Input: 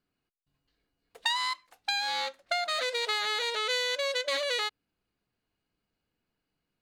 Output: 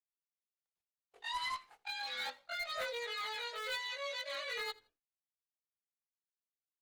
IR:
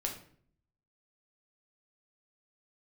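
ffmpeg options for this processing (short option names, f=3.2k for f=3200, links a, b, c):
-filter_complex "[0:a]afftfilt=real='re':imag='-im':win_size=2048:overlap=0.75,aemphasis=mode=reproduction:type=50kf,agate=range=-33dB:threshold=-58dB:ratio=3:detection=peak,lowshelf=f=330:g=-6.5,areverse,acompressor=threshold=-51dB:ratio=8,areverse,aphaser=in_gain=1:out_gain=1:delay=3.1:decay=0.5:speed=0.35:type=triangular,bandreject=f=60:t=h:w=6,bandreject=f=120:t=h:w=6,bandreject=f=180:t=h:w=6,bandreject=f=240:t=h:w=6,bandreject=f=300:t=h:w=6,bandreject=f=360:t=h:w=6,bandreject=f=420:t=h:w=6,bandreject=f=480:t=h:w=6,bandreject=f=540:t=h:w=6,asplit=2[a][b];[b]aeval=exprs='(mod(150*val(0)+1,2)-1)/150':c=same,volume=-11dB[c];[a][c]amix=inputs=2:normalize=0,aecho=1:1:82|164:0.0668|0.0174,volume=10dB" -ar 48000 -c:a libopus -b:a 20k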